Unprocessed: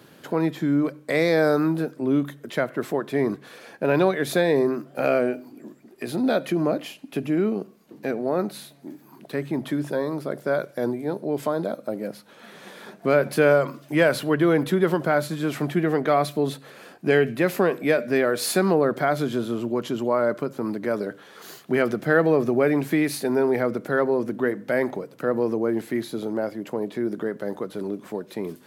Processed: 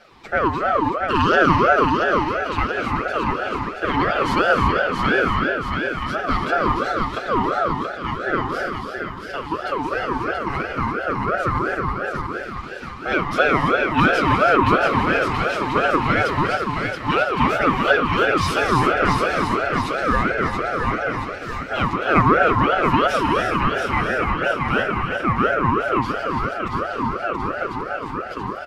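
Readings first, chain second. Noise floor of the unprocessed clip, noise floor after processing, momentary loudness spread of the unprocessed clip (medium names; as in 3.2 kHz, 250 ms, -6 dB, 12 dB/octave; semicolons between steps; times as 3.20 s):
-51 dBFS, -32 dBFS, 12 LU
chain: coarse spectral quantiser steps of 15 dB; three-band isolator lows -22 dB, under 230 Hz, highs -16 dB, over 7.5 kHz; comb 6.2 ms, depth 78%; on a send: two-band feedback delay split 490 Hz, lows 123 ms, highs 678 ms, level -5 dB; on the sum: gated-style reverb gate 360 ms rising, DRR 3.5 dB; in parallel at -9.5 dB: overload inside the chain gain 20 dB; on the sum: treble shelf 6.3 kHz -6 dB; ring modulator with a swept carrier 810 Hz, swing 30%, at 2.9 Hz; trim +1.5 dB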